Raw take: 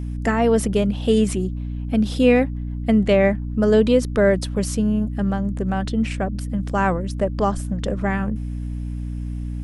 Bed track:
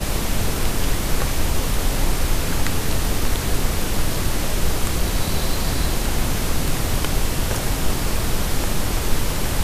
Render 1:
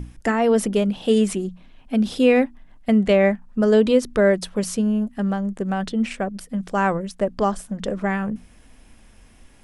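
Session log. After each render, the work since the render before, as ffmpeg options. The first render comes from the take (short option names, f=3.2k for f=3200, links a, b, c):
-af "bandreject=f=60:t=h:w=6,bandreject=f=120:t=h:w=6,bandreject=f=180:t=h:w=6,bandreject=f=240:t=h:w=6,bandreject=f=300:t=h:w=6"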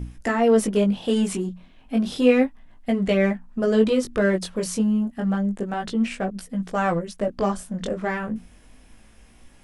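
-filter_complex "[0:a]asplit=2[a][b];[b]asoftclip=type=hard:threshold=-22.5dB,volume=-10.5dB[c];[a][c]amix=inputs=2:normalize=0,flanger=delay=16:depth=6.7:speed=0.31"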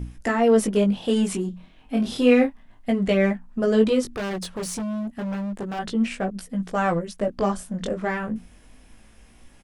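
-filter_complex "[0:a]asplit=3[a][b][c];[a]afade=t=out:st=1.52:d=0.02[d];[b]asplit=2[e][f];[f]adelay=29,volume=-6.5dB[g];[e][g]amix=inputs=2:normalize=0,afade=t=in:st=1.52:d=0.02,afade=t=out:st=2.9:d=0.02[h];[c]afade=t=in:st=2.9:d=0.02[i];[d][h][i]amix=inputs=3:normalize=0,asettb=1/sr,asplit=3[j][k][l];[j]atrim=end=4.074[m];[k]atrim=start=4.07:end=5.79,asetpts=PTS-STARTPTS,afade=t=in:d=0.004:c=qsin,afade=t=out:st=1.716:d=0.004:c=qsin,asoftclip=type=hard:threshold=-26.5dB[n];[l]atrim=start=5.786[o];[m][n]acrossfade=d=0.004:c1=hsin:c2=qsin[p];[p][o]acrossfade=d=0.004:c1=qsin:c2=hsin"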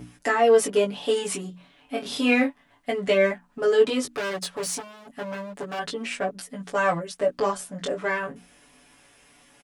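-af "highpass=f=450:p=1,aecho=1:1:7:0.95"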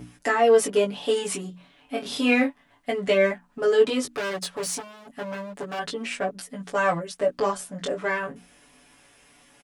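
-af anull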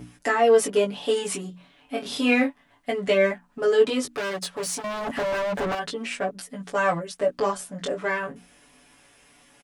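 -filter_complex "[0:a]asettb=1/sr,asplit=3[a][b][c];[a]atrim=end=4.844[d];[b]atrim=start=4.84:end=5.75,asetpts=PTS-STARTPTS,afade=t=in:d=0.004:c=qsin,afade=t=out:st=0.906:d=0.004:c=qsin,asplit=2[e][f];[f]highpass=f=720:p=1,volume=36dB,asoftclip=type=tanh:threshold=-18.5dB[g];[e][g]amix=inputs=2:normalize=0,lowpass=f=1.7k:p=1,volume=-6dB[h];[c]atrim=start=5.746[i];[d][h]acrossfade=d=0.004:c1=hsin:c2=qsin[j];[j][i]acrossfade=d=0.004:c1=qsin:c2=hsin"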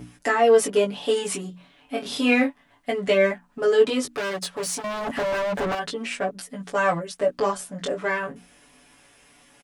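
-af "volume=1dB"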